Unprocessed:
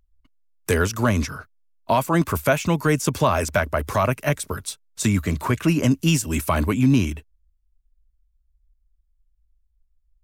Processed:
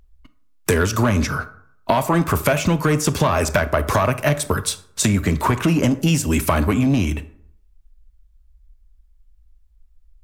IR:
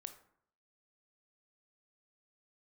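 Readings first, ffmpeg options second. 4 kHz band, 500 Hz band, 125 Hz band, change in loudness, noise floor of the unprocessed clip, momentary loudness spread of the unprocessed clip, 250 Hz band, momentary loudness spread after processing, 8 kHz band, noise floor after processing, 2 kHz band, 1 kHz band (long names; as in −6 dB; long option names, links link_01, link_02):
+3.5 dB, +2.5 dB, +2.5 dB, +2.5 dB, −67 dBFS, 10 LU, +2.0 dB, 7 LU, +4.0 dB, −55 dBFS, +2.5 dB, +2.5 dB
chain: -filter_complex "[0:a]asoftclip=type=tanh:threshold=-13dB,acompressor=threshold=-27dB:ratio=6,asplit=2[link_01][link_02];[link_02]highshelf=frequency=6500:gain=-7[link_03];[1:a]atrim=start_sample=2205[link_04];[link_03][link_04]afir=irnorm=-1:irlink=0,volume=10dB[link_05];[link_01][link_05]amix=inputs=2:normalize=0,volume=3.5dB"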